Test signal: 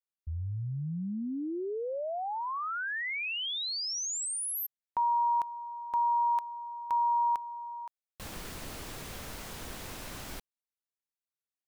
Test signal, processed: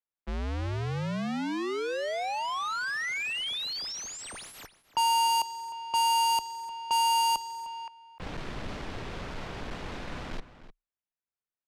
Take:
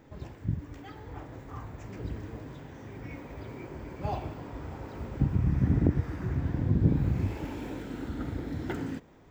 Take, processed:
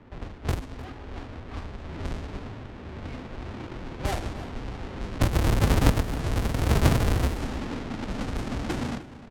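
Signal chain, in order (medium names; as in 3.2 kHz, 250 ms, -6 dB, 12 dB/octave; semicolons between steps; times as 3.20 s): square wave that keeps the level; level-controlled noise filter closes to 2.3 kHz, open at -22.5 dBFS; frequency shift -29 Hz; echo from a far wall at 52 m, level -14 dB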